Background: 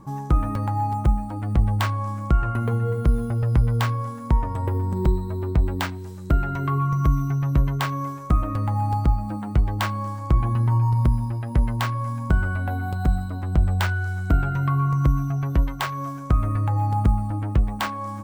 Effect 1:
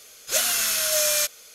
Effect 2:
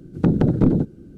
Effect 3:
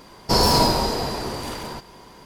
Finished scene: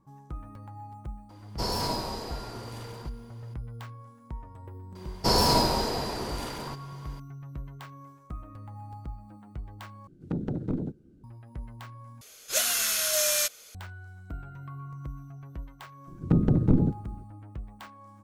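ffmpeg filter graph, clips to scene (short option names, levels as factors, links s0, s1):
-filter_complex "[3:a]asplit=2[s0][s1];[2:a]asplit=2[s2][s3];[0:a]volume=0.106[s4];[s3]lowshelf=f=160:g=10.5[s5];[s4]asplit=3[s6][s7][s8];[s6]atrim=end=10.074[s9];[s2]atrim=end=1.17,asetpts=PTS-STARTPTS,volume=0.2[s10];[s7]atrim=start=11.236:end=12.214[s11];[1:a]atrim=end=1.54,asetpts=PTS-STARTPTS,volume=0.668[s12];[s8]atrim=start=13.746[s13];[s0]atrim=end=2.25,asetpts=PTS-STARTPTS,volume=0.224,afade=t=in:d=0.004:c=hsin,afade=t=out:st=2.246:d=0.004:c=hsin,adelay=1290[s14];[s1]atrim=end=2.25,asetpts=PTS-STARTPTS,volume=0.562,afade=t=in:d=0.004:c=hsin,afade=t=out:st=2.246:d=0.004:c=hsin,adelay=4950[s15];[s5]atrim=end=1.17,asetpts=PTS-STARTPTS,volume=0.335,afade=t=in:d=0.004:c=hsin,afade=t=out:st=1.166:d=0.004:c=hsin,adelay=16070[s16];[s9][s10]acrossfade=d=0.004:c1=hsin:c2=hsin[s17];[s17][s11]acrossfade=d=0.004:c1=hsin:c2=hsin[s18];[s18][s12]acrossfade=d=0.004:c1=hsin:c2=hsin[s19];[s19][s13]acrossfade=d=0.004:c1=hsin:c2=hsin[s20];[s20][s14][s15][s16]amix=inputs=4:normalize=0"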